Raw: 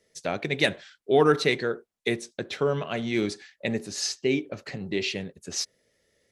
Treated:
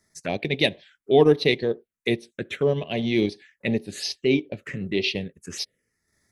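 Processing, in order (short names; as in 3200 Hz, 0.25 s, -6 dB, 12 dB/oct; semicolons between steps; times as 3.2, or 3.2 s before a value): transient shaper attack -3 dB, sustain -8 dB; envelope phaser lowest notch 490 Hz, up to 1400 Hz, full sweep at -27.5 dBFS; gain +6 dB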